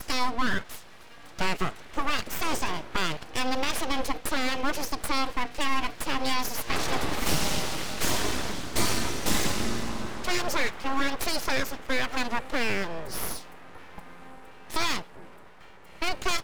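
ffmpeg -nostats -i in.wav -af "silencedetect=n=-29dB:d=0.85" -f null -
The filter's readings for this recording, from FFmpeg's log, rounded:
silence_start: 15.01
silence_end: 16.02 | silence_duration: 1.01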